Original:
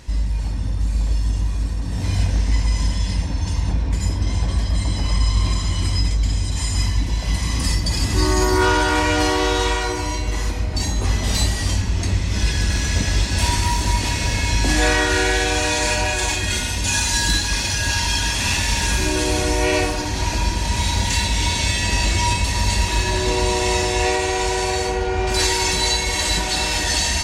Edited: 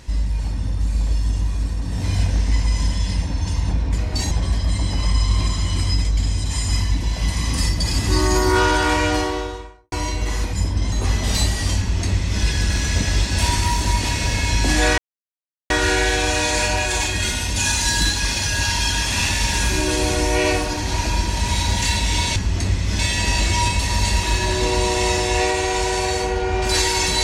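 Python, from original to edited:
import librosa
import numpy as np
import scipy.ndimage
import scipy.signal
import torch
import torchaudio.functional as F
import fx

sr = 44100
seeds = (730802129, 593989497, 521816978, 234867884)

y = fx.studio_fade_out(x, sr, start_s=8.98, length_s=1.0)
y = fx.edit(y, sr, fx.swap(start_s=3.98, length_s=0.39, other_s=10.59, other_length_s=0.33),
    fx.duplicate(start_s=11.79, length_s=0.63, to_s=21.64),
    fx.insert_silence(at_s=14.98, length_s=0.72), tone=tone)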